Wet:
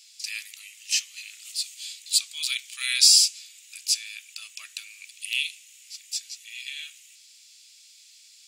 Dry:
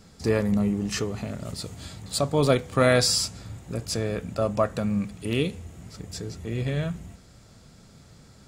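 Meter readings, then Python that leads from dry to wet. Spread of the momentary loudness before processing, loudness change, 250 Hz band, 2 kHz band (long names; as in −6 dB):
17 LU, +3.0 dB, below −40 dB, +0.5 dB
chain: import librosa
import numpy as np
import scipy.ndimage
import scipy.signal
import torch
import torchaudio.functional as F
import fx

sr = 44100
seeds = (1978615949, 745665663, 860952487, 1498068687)

y = scipy.signal.sosfilt(scipy.signal.cheby1(4, 1.0, 2500.0, 'highpass', fs=sr, output='sos'), x)
y = y * 10.0 ** (8.5 / 20.0)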